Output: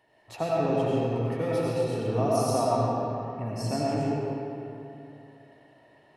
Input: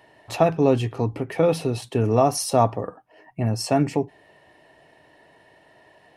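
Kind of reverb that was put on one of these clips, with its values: algorithmic reverb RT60 3 s, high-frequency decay 0.6×, pre-delay 55 ms, DRR -6.5 dB; trim -12.5 dB

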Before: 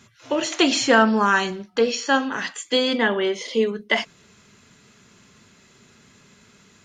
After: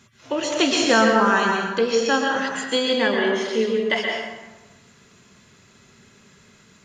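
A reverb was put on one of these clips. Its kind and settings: plate-style reverb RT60 1.2 s, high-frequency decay 0.6×, pre-delay 110 ms, DRR 0.5 dB; trim -2 dB

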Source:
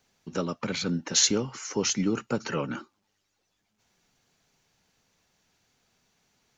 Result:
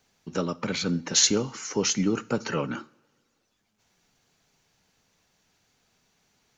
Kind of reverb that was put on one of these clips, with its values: two-slope reverb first 0.44 s, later 1.9 s, from -19 dB, DRR 16.5 dB; trim +1.5 dB

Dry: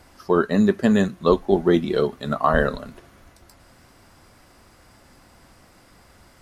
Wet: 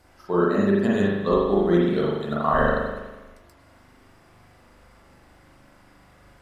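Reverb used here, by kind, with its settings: spring tank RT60 1.1 s, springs 40 ms, chirp 65 ms, DRR -6 dB; trim -8 dB

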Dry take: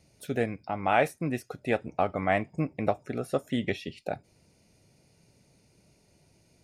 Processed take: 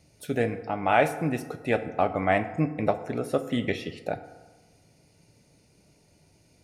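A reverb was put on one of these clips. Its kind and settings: FDN reverb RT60 1.3 s, low-frequency decay 0.8×, high-frequency decay 0.5×, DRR 9 dB; trim +2 dB

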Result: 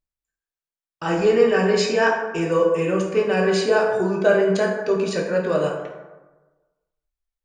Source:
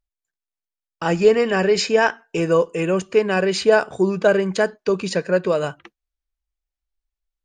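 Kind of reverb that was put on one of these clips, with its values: plate-style reverb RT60 1.2 s, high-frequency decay 0.45×, DRR -1.5 dB; trim -5 dB

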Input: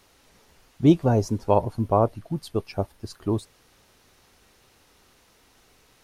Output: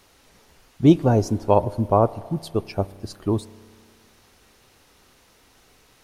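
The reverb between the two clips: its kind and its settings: spring tank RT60 2 s, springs 31 ms, chirp 60 ms, DRR 18.5 dB; trim +2.5 dB

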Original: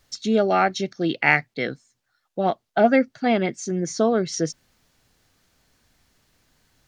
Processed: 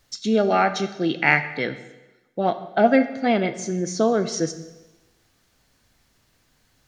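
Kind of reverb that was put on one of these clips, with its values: plate-style reverb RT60 1.1 s, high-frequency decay 0.95×, DRR 9.5 dB

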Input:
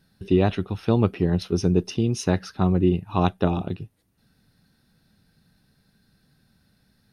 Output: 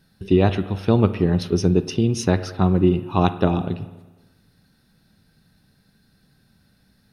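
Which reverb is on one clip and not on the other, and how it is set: spring tank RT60 1.2 s, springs 31/52 ms, chirp 25 ms, DRR 12 dB; trim +3 dB

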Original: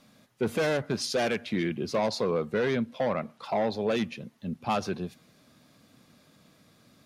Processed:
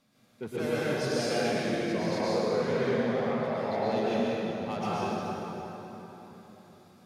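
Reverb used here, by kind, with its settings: plate-style reverb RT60 4 s, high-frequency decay 0.65×, pre-delay 100 ms, DRR -9.5 dB; trim -10.5 dB

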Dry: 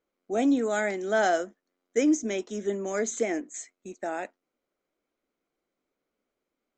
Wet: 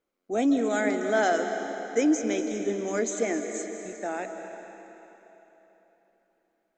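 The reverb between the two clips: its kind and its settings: algorithmic reverb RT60 3.6 s, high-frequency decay 0.9×, pre-delay 120 ms, DRR 5.5 dB

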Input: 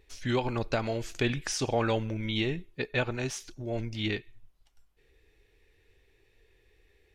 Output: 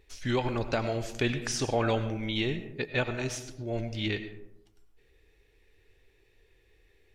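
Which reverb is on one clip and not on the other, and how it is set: algorithmic reverb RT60 0.88 s, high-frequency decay 0.35×, pre-delay 60 ms, DRR 10.5 dB

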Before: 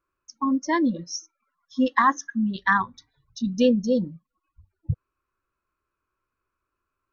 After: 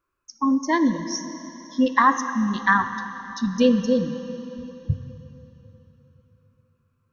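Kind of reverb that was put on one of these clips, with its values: plate-style reverb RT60 3.6 s, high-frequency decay 0.95×, DRR 8.5 dB; trim +2 dB

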